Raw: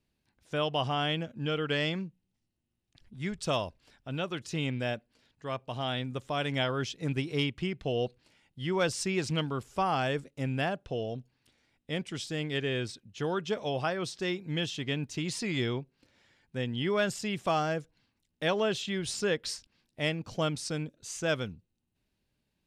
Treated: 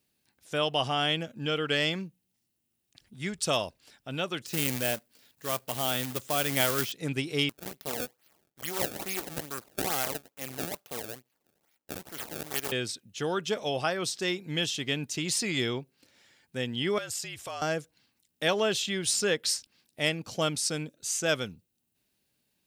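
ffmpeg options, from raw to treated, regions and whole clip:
ffmpeg -i in.wav -filter_complex "[0:a]asettb=1/sr,asplit=3[link_01][link_02][link_03];[link_01]atrim=end=4.464[link_04];[link_02]atrim=start=4.46:end=6.92,asetpts=PTS-STARTPTS,afade=type=in:duration=0.004:curve=qsin,afade=type=out:start_time=2.456:duration=0.004:curve=qsin,acrossover=split=3600[link_05][link_06];[link_06]acompressor=threshold=-54dB:ratio=4:attack=1:release=60[link_07];[link_05][link_07]amix=inputs=2:normalize=0,acrusher=bits=2:mode=log:mix=0:aa=0.000001[link_08];[link_03]atrim=start=6.916[link_09];[link_04][link_08]acrossfade=duration=0.004:curve1=hsin:curve2=qsin[link_10];[link_10][link_09]acrossfade=duration=0.004:curve1=qsin:curve2=hsin,asettb=1/sr,asplit=3[link_11][link_12][link_13];[link_11]atrim=end=7.494[link_14];[link_12]atrim=start=7.49:end=12.72,asetpts=PTS-STARTPTS,afade=type=in:duration=0.004:curve=qsin,afade=type=out:start_time=5.226:duration=0.004:curve=qsin,highpass=frequency=450:poles=1,acrusher=samples=25:mix=1:aa=0.000001:lfo=1:lforange=40:lforate=2.3,aeval=exprs='max(val(0),0)':channel_layout=same[link_15];[link_13]atrim=start=12.716[link_16];[link_14][link_15]acrossfade=duration=0.004:curve1=hsin:curve2=qsin[link_17];[link_17][link_16]acrossfade=duration=0.004:curve1=qsin:curve2=hsin,asettb=1/sr,asplit=3[link_18][link_19][link_20];[link_18]atrim=end=16.984[link_21];[link_19]atrim=start=16.98:end=17.62,asetpts=PTS-STARTPTS,afade=type=in:duration=0.004:curve=qsin,afade=type=out:start_time=0.636:duration=0.004:curve=qsin,equalizer=frequency=280:width=1.1:gain=-10,acompressor=threshold=-40dB:ratio=3:attack=3.2:release=140:knee=1:detection=peak,afreqshift=-47[link_22];[link_20]atrim=start=17.616[link_23];[link_21][link_22]acrossfade=duration=0.004:curve1=hsin:curve2=qsin[link_24];[link_24][link_23]acrossfade=duration=0.004:curve1=qsin:curve2=hsin,highpass=frequency=180:poles=1,aemphasis=mode=production:type=50kf,bandreject=frequency=1000:width=18,volume=2dB" out.wav

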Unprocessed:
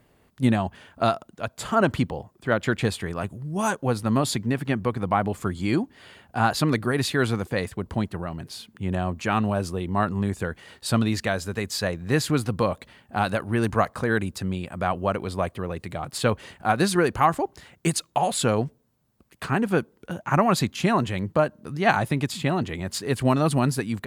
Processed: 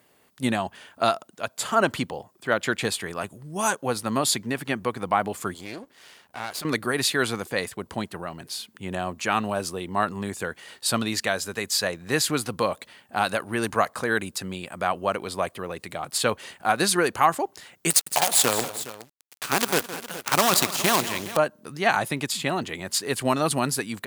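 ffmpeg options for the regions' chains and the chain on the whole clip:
ffmpeg -i in.wav -filter_complex "[0:a]asettb=1/sr,asplit=3[link_01][link_02][link_03];[link_01]atrim=end=5.544[link_04];[link_02]atrim=start=5.54:end=6.65,asetpts=PTS-STARTPTS,afade=type=in:duration=0.004:curve=qsin,afade=type=out:start_time=1.106:duration=0.004:curve=qsin,acompressor=threshold=-32dB:ratio=2:attack=3.2:release=140:knee=1:detection=peak,aeval=exprs='max(val(0),0)':channel_layout=same[link_05];[link_03]atrim=start=6.646[link_06];[link_04][link_05]acrossfade=duration=0.004:curve1=hsin:curve2=qsin[link_07];[link_07][link_06]acrossfade=duration=0.004:curve1=qsin:curve2=hsin,asettb=1/sr,asplit=3[link_08][link_09][link_10];[link_08]atrim=end=17.904[link_11];[link_09]atrim=start=17.9:end=21.37,asetpts=PTS-STARTPTS,afade=type=in:duration=0.004:curve=qsin,afade=type=out:start_time=3.466:duration=0.004:curve=qsin,highshelf=frequency=2800:gain=6,acrusher=bits=4:dc=4:mix=0:aa=0.000001,aecho=1:1:164|213|414:0.188|0.112|0.15,atrim=end_sample=153027[link_12];[link_10]atrim=start=21.366[link_13];[link_11][link_12]acrossfade=duration=0.004:curve1=hsin:curve2=qsin[link_14];[link_14][link_13]acrossfade=duration=0.004:curve1=qsin:curve2=hsin,highpass=frequency=390:poles=1,highshelf=frequency=3800:gain=7,alimiter=level_in=6dB:limit=-1dB:release=50:level=0:latency=1,volume=-5dB" out.wav

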